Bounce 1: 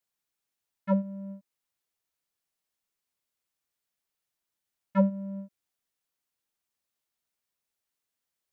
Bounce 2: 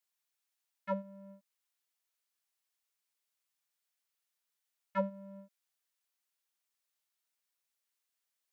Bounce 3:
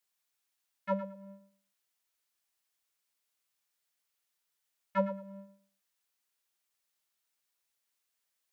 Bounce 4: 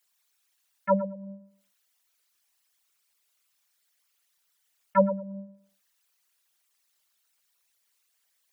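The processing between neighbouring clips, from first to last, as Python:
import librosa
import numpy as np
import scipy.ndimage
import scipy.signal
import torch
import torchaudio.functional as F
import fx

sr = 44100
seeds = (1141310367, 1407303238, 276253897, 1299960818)

y1 = fx.highpass(x, sr, hz=1000.0, slope=6)
y2 = fx.echo_feedback(y1, sr, ms=111, feedback_pct=21, wet_db=-12)
y2 = y2 * librosa.db_to_amplitude(3.0)
y3 = fx.envelope_sharpen(y2, sr, power=2.0)
y3 = y3 * librosa.db_to_amplitude(9.0)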